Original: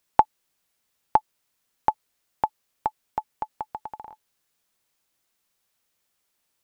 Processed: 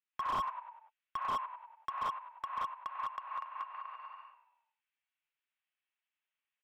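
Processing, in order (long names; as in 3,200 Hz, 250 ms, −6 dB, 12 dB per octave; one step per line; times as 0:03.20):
mu-law and A-law mismatch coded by A
first difference
echo with shifted repeats 97 ms, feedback 48%, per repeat −40 Hz, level −12 dB
single-sideband voice off tune +220 Hz 290–2,600 Hz
reverb whose tail is shaped and stops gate 220 ms rising, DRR −5 dB
slew-rate limiting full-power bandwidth 16 Hz
level +5.5 dB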